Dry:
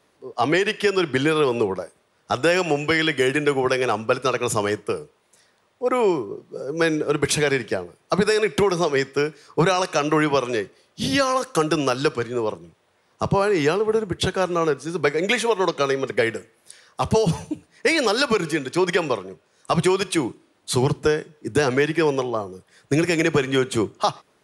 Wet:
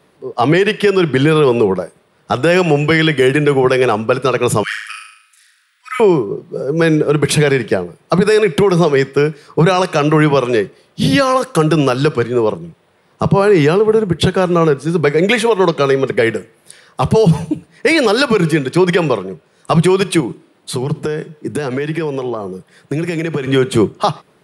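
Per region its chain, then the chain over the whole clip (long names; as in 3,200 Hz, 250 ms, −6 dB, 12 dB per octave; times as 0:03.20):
0:04.63–0:06.00: Butterworth high-pass 1,400 Hz 48 dB per octave + flutter between parallel walls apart 6.4 metres, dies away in 0.73 s
0:20.20–0:23.47: high-pass filter 110 Hz + downward compressor, threshold −26 dBFS
whole clip: graphic EQ with 15 bands 160 Hz +9 dB, 400 Hz +3 dB, 6,300 Hz −7 dB; brickwall limiter −10.5 dBFS; level +7.5 dB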